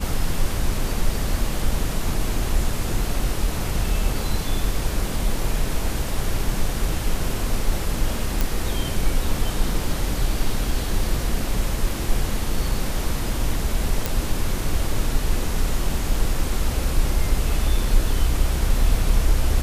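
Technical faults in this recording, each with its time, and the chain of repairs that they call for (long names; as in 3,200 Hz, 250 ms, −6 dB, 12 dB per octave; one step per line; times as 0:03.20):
0:08.41: click
0:14.06: click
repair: click removal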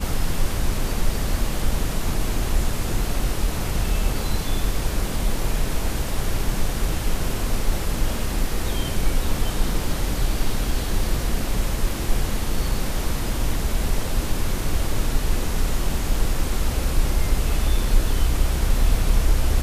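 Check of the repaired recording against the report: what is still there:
none of them is left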